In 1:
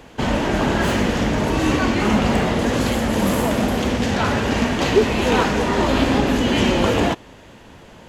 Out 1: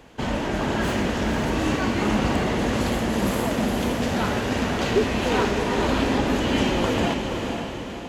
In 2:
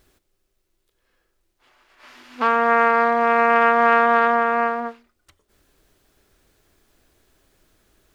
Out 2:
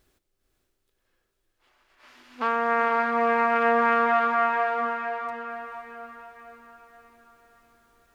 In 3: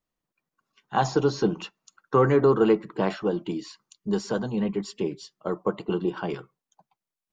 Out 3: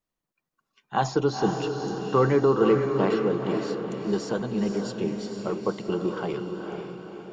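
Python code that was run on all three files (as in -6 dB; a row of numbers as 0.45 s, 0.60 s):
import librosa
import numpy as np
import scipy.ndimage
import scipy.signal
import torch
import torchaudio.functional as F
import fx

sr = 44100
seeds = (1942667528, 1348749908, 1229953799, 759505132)

y = fx.echo_diffused(x, sr, ms=490, feedback_pct=50, wet_db=-5.0)
y = y * 10.0 ** (-9 / 20.0) / np.max(np.abs(y))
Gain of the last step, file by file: -5.5 dB, -6.5 dB, -1.0 dB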